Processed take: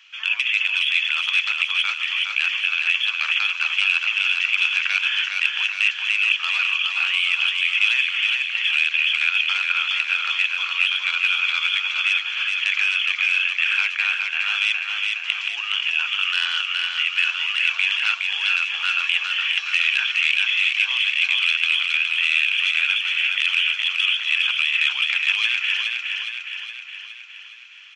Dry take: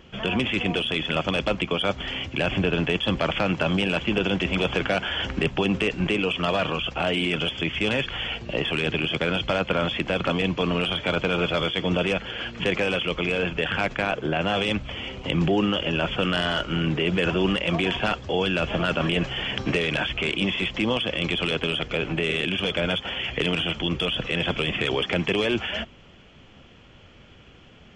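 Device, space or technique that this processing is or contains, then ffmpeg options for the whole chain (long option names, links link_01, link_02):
headphones lying on a table: -af "highpass=frequency=1300:width=0.5412,highpass=frequency=1300:width=1.3066,equalizer=frequency=160:width_type=o:width=0.33:gain=-10,equalizer=frequency=630:width_type=o:width=0.33:gain=-10,equalizer=frequency=2500:width_type=o:width=0.33:gain=10,equalizer=frequency=4000:width_type=o:width=0.33:gain=7,equalizer=frequency=5900:width_type=o:width=0.44:gain=6,aecho=1:1:415|830|1245|1660|2075|2490|2905|3320:0.631|0.36|0.205|0.117|0.0666|0.038|0.0216|0.0123"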